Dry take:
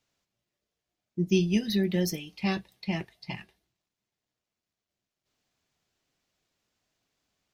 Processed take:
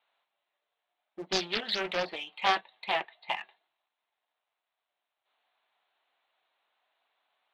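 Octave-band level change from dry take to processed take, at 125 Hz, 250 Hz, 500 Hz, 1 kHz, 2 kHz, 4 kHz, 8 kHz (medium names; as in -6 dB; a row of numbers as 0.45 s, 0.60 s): -21.0 dB, -16.0 dB, -3.5 dB, +11.5 dB, +5.5 dB, +5.0 dB, -4.0 dB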